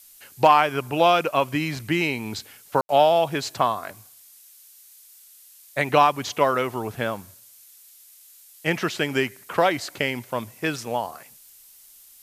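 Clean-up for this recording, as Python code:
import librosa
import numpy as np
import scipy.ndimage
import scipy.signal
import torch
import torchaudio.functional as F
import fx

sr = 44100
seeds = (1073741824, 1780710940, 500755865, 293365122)

y = fx.fix_declip(x, sr, threshold_db=-5.0)
y = fx.fix_ambience(y, sr, seeds[0], print_start_s=7.71, print_end_s=8.21, start_s=2.81, end_s=2.89)
y = fx.noise_reduce(y, sr, print_start_s=7.71, print_end_s=8.21, reduce_db=16.0)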